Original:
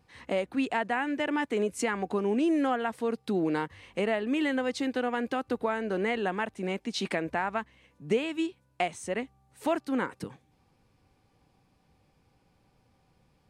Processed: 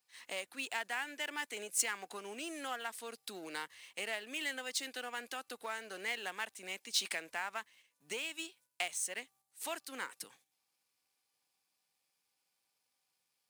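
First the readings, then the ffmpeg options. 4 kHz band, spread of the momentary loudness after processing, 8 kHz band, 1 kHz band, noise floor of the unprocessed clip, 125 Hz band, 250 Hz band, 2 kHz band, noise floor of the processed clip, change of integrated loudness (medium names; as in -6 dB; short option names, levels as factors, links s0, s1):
0.0 dB, 11 LU, +6.5 dB, -11.5 dB, -69 dBFS, under -25 dB, -22.5 dB, -5.0 dB, -83 dBFS, -9.0 dB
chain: -filter_complex "[0:a]aeval=exprs='if(lt(val(0),0),0.708*val(0),val(0))':c=same,agate=range=0.447:threshold=0.00178:ratio=16:detection=peak,lowshelf=f=150:g=-3.5,acrossover=split=520|3300[s0][s1][s2];[s2]acrusher=bits=5:mode=log:mix=0:aa=0.000001[s3];[s0][s1][s3]amix=inputs=3:normalize=0,aderivative,volume=2.37"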